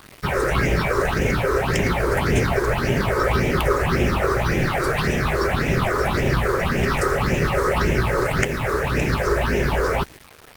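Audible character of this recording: phasing stages 6, 1.8 Hz, lowest notch 190–1200 Hz; a quantiser's noise floor 8-bit, dither none; Opus

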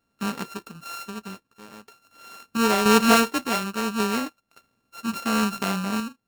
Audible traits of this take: a buzz of ramps at a fixed pitch in blocks of 32 samples; random-step tremolo; Nellymoser

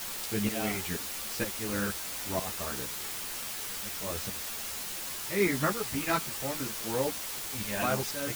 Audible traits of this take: tremolo saw up 2.1 Hz, depth 85%; a quantiser's noise floor 6-bit, dither triangular; a shimmering, thickened sound

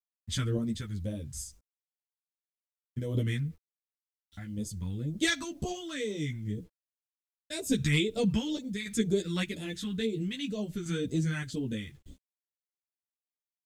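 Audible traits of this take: phasing stages 2, 2 Hz, lowest notch 460–1700 Hz; random-step tremolo, depth 70%; a quantiser's noise floor 12-bit, dither none; a shimmering, thickened sound

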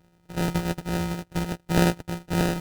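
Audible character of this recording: a buzz of ramps at a fixed pitch in blocks of 256 samples; phasing stages 2, 3.3 Hz, lowest notch 800–2200 Hz; aliases and images of a low sample rate 1.1 kHz, jitter 0%; AAC

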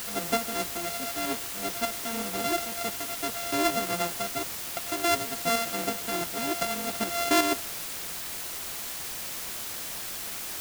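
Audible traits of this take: a buzz of ramps at a fixed pitch in blocks of 64 samples; tremolo saw up 2.7 Hz, depth 55%; a quantiser's noise floor 6-bit, dither triangular

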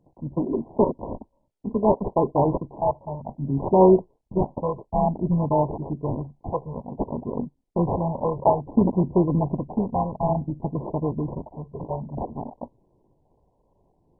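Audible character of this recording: phasing stages 8, 0.57 Hz, lowest notch 260–1700 Hz; aliases and images of a low sample rate 1.5 kHz, jitter 0%; MP2

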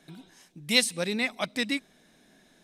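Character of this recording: noise floor -62 dBFS; spectral tilt -2.0 dB/octave

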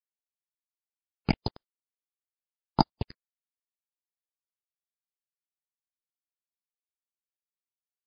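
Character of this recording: a quantiser's noise floor 6-bit, dither none; phasing stages 6, 0.8 Hz, lowest notch 220–2500 Hz; MP3

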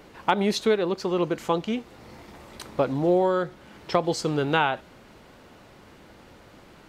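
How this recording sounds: noise floor -51 dBFS; spectral tilt -4.5 dB/octave

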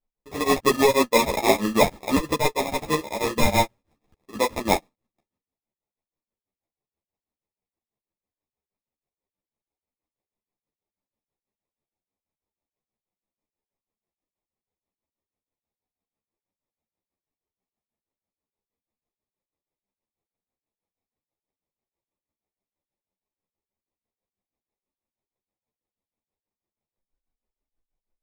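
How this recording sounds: tremolo triangle 6.2 Hz, depth 100%; aliases and images of a low sample rate 1.5 kHz, jitter 0%; a shimmering, thickened sound

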